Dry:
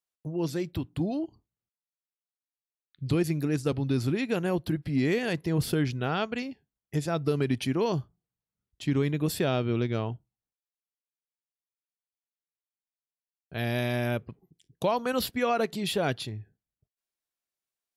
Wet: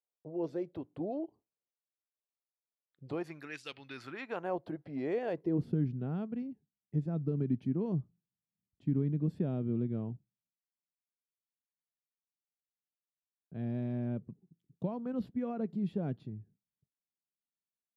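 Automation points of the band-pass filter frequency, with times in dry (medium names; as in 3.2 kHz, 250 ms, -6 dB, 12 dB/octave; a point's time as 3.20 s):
band-pass filter, Q 1.8
3.03 s 530 Hz
3.66 s 3 kHz
4.61 s 630 Hz
5.28 s 630 Hz
5.72 s 190 Hz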